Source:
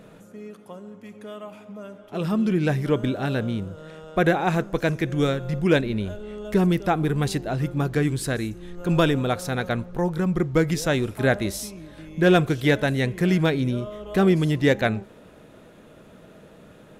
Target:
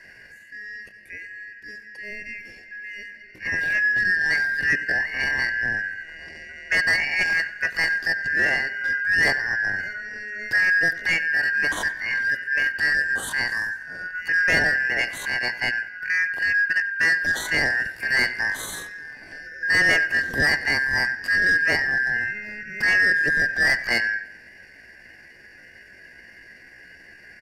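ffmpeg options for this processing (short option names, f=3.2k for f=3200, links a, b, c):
-filter_complex "[0:a]afftfilt=real='real(if(lt(b,272),68*(eq(floor(b/68),0)*2+eq(floor(b/68),1)*0+eq(floor(b/68),2)*3+eq(floor(b/68),3)*1)+mod(b,68),b),0)':imag='imag(if(lt(b,272),68*(eq(floor(b/68),0)*2+eq(floor(b/68),1)*0+eq(floor(b/68),2)*3+eq(floor(b/68),3)*1)+mod(b,68),b),0)':win_size=2048:overlap=0.75,acrossover=split=420[a][b];[a]acompressor=threshold=-27dB:ratio=10[c];[c][b]amix=inputs=2:normalize=0,asoftclip=type=tanh:threshold=-15dB,atempo=0.62,tiltshelf=f=670:g=8.5,asplit=2[d][e];[e]adelay=94,lowpass=f=3.7k:p=1,volume=-16.5dB,asplit=2[f][g];[g]adelay=94,lowpass=f=3.7k:p=1,volume=0.45,asplit=2[h][i];[i]adelay=94,lowpass=f=3.7k:p=1,volume=0.45,asplit=2[j][k];[k]adelay=94,lowpass=f=3.7k:p=1,volume=0.45[l];[f][h][j][l]amix=inputs=4:normalize=0[m];[d][m]amix=inputs=2:normalize=0,volume=7.5dB"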